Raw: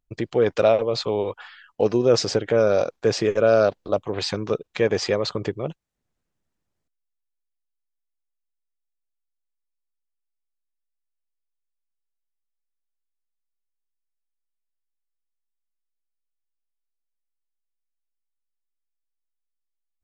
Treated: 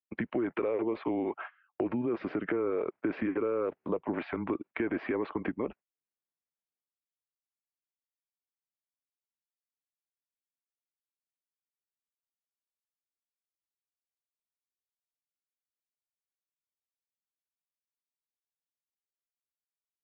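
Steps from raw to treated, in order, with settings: gate -40 dBFS, range -21 dB; low shelf 220 Hz -10.5 dB; limiter -18.5 dBFS, peak gain reduction 10.5 dB; compressor, threshold -30 dBFS, peak gain reduction 8 dB; mistuned SSB -120 Hz 260–2500 Hz; gain +3 dB

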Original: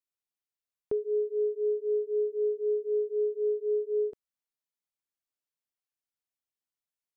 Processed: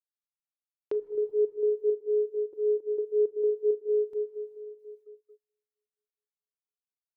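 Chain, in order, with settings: step gate "x..xxx..xx" 166 bpm -24 dB; low shelf 160 Hz -8.5 dB; comb 2.2 ms, depth 36%; Schroeder reverb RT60 2.6 s, combs from 26 ms, DRR 2.5 dB; dynamic EQ 540 Hz, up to -6 dB, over -37 dBFS, Q 2.2; reverb removal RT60 0.74 s; gate -54 dBFS, range -25 dB

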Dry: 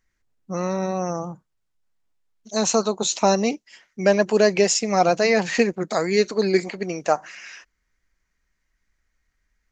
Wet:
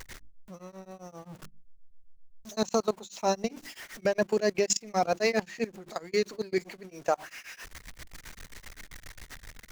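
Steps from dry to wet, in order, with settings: zero-crossing step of -32.5 dBFS; notches 50/100/150/200/250/300/350 Hz; level quantiser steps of 20 dB; beating tremolo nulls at 7.6 Hz; gain -2.5 dB

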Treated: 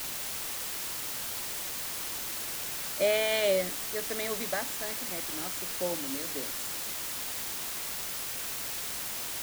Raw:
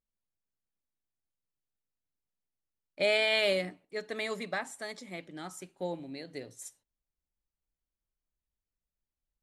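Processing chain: speaker cabinet 150–9600 Hz, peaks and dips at 270 Hz +5 dB, 560 Hz +4 dB, 2500 Hz -5 dB, 4700 Hz -9 dB; requantised 6-bit, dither triangular

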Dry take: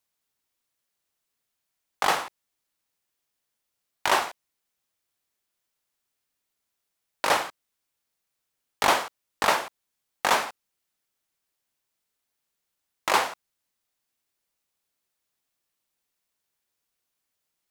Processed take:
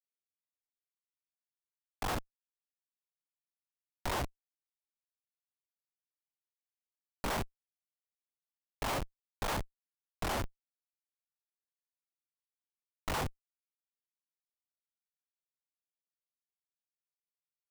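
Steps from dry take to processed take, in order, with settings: Schmitt trigger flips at -23.5 dBFS; record warp 33 1/3 rpm, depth 250 cents

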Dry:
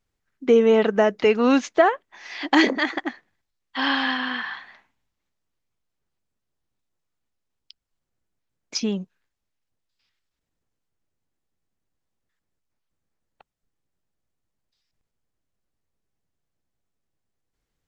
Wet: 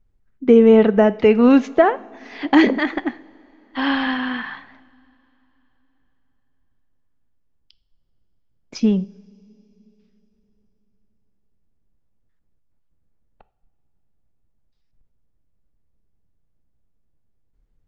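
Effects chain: tilt -3.5 dB/oct; two-slope reverb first 0.48 s, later 3.8 s, from -18 dB, DRR 15 dB; dynamic EQ 2500 Hz, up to +4 dB, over -39 dBFS, Q 1

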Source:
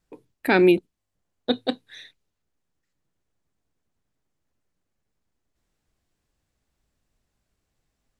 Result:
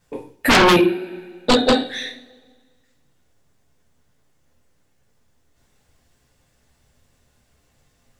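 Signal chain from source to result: two-slope reverb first 0.38 s, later 1.7 s, from -25 dB, DRR -5 dB; sine folder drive 11 dB, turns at -3 dBFS; gain -6 dB

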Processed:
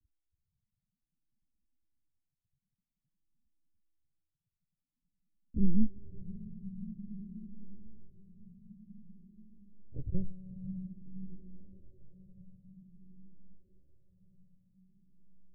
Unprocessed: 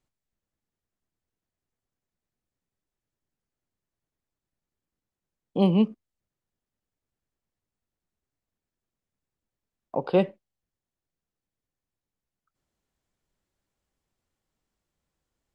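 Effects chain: spring tank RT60 3.6 s, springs 54 ms, chirp 55 ms, DRR 15.5 dB; in parallel at +1 dB: compressor 12:1, threshold -35 dBFS, peak gain reduction 20 dB; on the sum: LPC vocoder at 8 kHz pitch kept; inverse Chebyshev low-pass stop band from 1200 Hz, stop band 80 dB; on a send: diffused feedback echo 0.623 s, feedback 68%, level -13 dB; on the sum: endless phaser +0.51 Hz; gain +2 dB

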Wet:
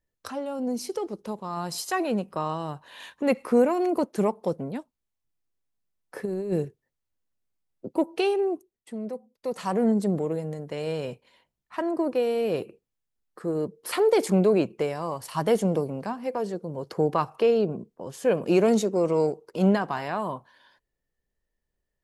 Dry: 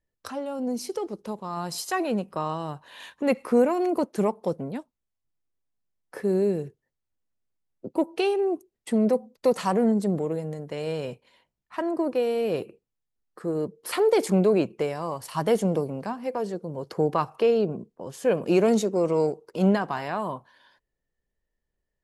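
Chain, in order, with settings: 6.25–6.65 negative-ratio compressor -26 dBFS, ratio -0.5; 8.4–9.9 dip -12 dB, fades 0.48 s

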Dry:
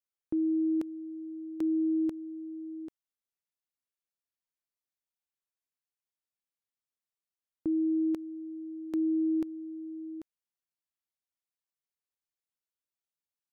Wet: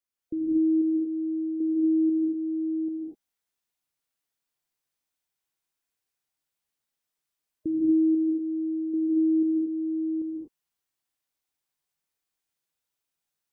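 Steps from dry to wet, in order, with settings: spectral gate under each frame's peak -25 dB strong; vocal rider within 4 dB 0.5 s; non-linear reverb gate 0.27 s rising, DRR -2.5 dB

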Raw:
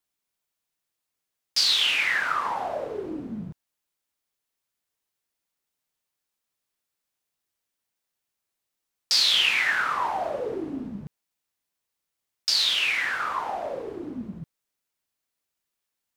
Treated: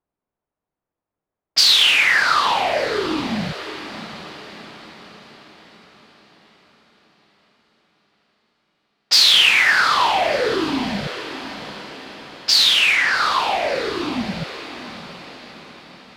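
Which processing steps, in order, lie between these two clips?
low-pass opened by the level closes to 860 Hz, open at -20 dBFS; diffused feedback echo 0.693 s, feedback 51%, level -13 dB; in parallel at -4 dB: soft clip -22 dBFS, distortion -11 dB; on the sum: gain +5.5 dB

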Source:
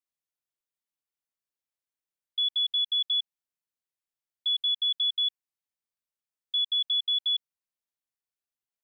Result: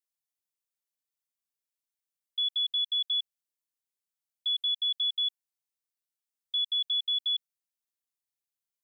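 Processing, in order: high shelf 3200 Hz +10 dB; gain -7.5 dB

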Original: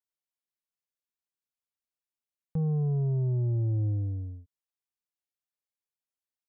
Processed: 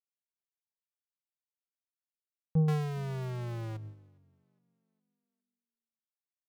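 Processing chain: 2.68–3.77 power-law curve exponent 0.35; reverb removal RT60 1.7 s; on a send: frequency-shifting echo 0.41 s, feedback 44%, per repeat +34 Hz, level -17 dB; on the sum: upward expander 2.5:1, over -42 dBFS; gain +3.5 dB

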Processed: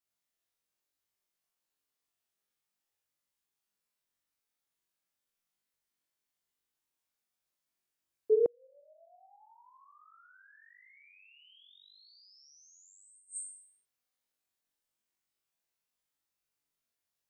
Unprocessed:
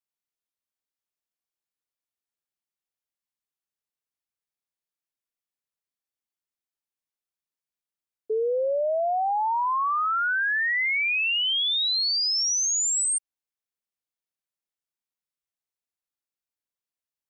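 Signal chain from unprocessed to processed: flutter echo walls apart 3.6 m, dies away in 0.69 s; flipped gate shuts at -17 dBFS, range -41 dB

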